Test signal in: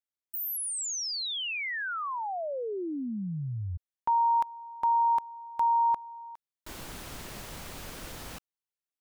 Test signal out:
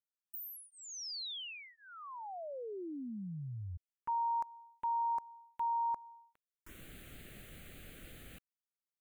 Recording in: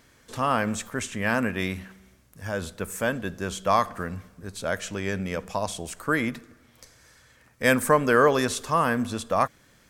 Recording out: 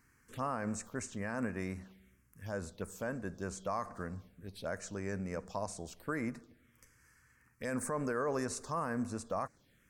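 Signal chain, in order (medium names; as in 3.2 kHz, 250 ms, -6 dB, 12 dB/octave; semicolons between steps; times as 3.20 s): peak limiter -15.5 dBFS; touch-sensitive phaser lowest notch 580 Hz, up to 3.3 kHz, full sweep at -27.5 dBFS; trim -8.5 dB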